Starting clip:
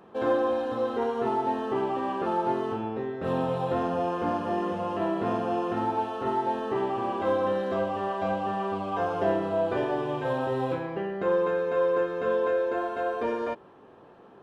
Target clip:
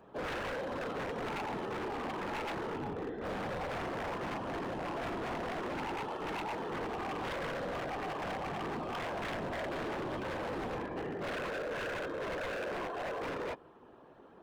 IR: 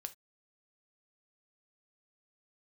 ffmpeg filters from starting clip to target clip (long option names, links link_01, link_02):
-af "asoftclip=type=tanh:threshold=-19dB,afftfilt=real='hypot(re,im)*cos(2*PI*random(0))':imag='hypot(re,im)*sin(2*PI*random(1))':win_size=512:overlap=0.75,aeval=exprs='0.0211*(abs(mod(val(0)/0.0211+3,4)-2)-1)':channel_layout=same,volume=1dB"